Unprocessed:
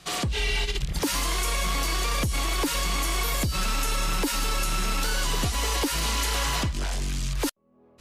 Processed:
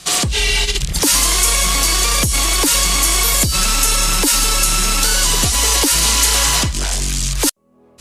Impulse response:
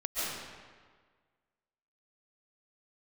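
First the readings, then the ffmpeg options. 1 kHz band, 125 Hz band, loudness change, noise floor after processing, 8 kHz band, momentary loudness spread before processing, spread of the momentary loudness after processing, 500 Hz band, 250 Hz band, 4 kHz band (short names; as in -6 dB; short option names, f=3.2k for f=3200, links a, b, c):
+8.0 dB, +7.5 dB, +13.0 dB, -50 dBFS, +17.5 dB, 4 LU, 6 LU, +7.5 dB, +7.5 dB, +13.0 dB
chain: -af "equalizer=f=8.5k:w=0.5:g=11,volume=7.5dB"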